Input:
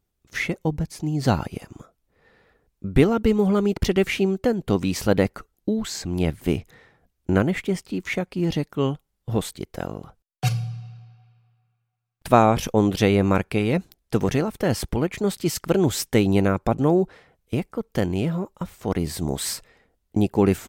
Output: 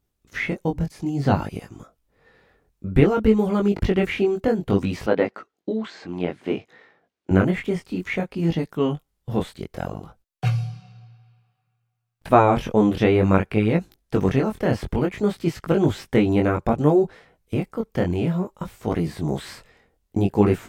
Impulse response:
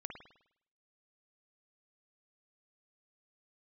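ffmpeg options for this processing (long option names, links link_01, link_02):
-filter_complex "[0:a]acrossover=split=3100[link_01][link_02];[link_02]acompressor=threshold=-48dB:ratio=4:attack=1:release=60[link_03];[link_01][link_03]amix=inputs=2:normalize=0,flanger=delay=18:depth=5.6:speed=0.58,asettb=1/sr,asplit=3[link_04][link_05][link_06];[link_04]atrim=end=5.064[link_07];[link_05]atrim=start=5.06:end=7.31,asetpts=PTS-STARTPTS,afade=type=in:duration=0.004:curve=qsin,afade=type=out:start_time=2.246:duration=0.004:curve=qsin,highpass=270,lowpass=4400[link_08];[link_06]atrim=start=7.306[link_09];[link_07][link_08]acrossfade=duration=0.004:curve1=hsin:curve2=qsin[link_10];[link_10][link_09]acrossfade=duration=0.004:curve1=qsin:curve2=hsin,volume=4dB"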